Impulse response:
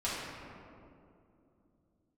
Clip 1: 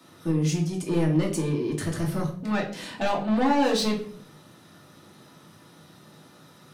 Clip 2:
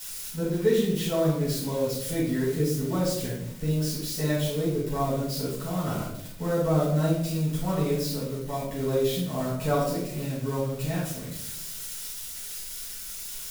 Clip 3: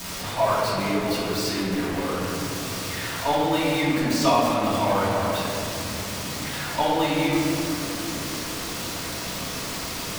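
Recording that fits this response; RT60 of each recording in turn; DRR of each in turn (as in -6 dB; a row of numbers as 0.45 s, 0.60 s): 3; 0.55 s, 0.80 s, 2.6 s; -2.0 dB, -10.0 dB, -10.0 dB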